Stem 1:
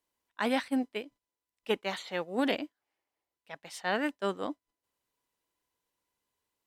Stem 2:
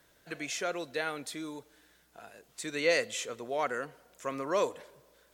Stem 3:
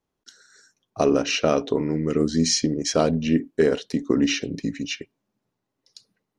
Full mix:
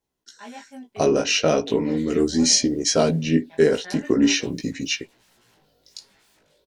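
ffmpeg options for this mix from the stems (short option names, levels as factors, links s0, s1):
-filter_complex "[0:a]aecho=1:1:5:0.86,volume=0.596[s0];[1:a]equalizer=f=125:t=o:w=1:g=7,equalizer=f=1000:t=o:w=1:g=-12,equalizer=f=2000:t=o:w=1:g=-10,equalizer=f=4000:t=o:w=1:g=12,equalizer=f=8000:t=o:w=1:g=-11,acompressor=threshold=0.0126:ratio=6,aeval=exprs='0.01*sin(PI/2*5.01*val(0)/0.01)':c=same,adelay=1700,volume=0.133[s1];[2:a]highshelf=f=4400:g=7,volume=1.06[s2];[s0][s1]amix=inputs=2:normalize=0,flanger=delay=16.5:depth=4.3:speed=1.3,acompressor=threshold=0.00794:ratio=1.5,volume=1[s3];[s2][s3]amix=inputs=2:normalize=0,bandreject=f=1200:w=9.3,dynaudnorm=f=130:g=11:m=2,flanger=delay=15.5:depth=4.4:speed=0.41"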